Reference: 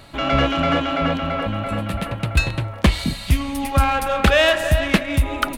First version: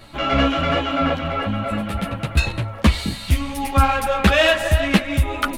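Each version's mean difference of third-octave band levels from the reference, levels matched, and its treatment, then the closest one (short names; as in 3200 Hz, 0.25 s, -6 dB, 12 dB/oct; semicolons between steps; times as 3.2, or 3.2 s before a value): 1.5 dB: ensemble effect; gain +3 dB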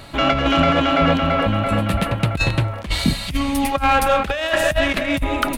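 4.0 dB: negative-ratio compressor -19 dBFS, ratio -0.5; gain +3 dB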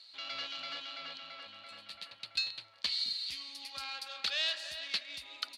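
11.5 dB: band-pass 4400 Hz, Q 7; gain +2 dB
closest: first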